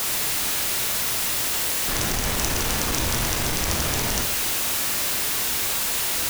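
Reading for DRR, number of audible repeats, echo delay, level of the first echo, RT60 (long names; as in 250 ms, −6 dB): 3.5 dB, no echo audible, no echo audible, no echo audible, 0.75 s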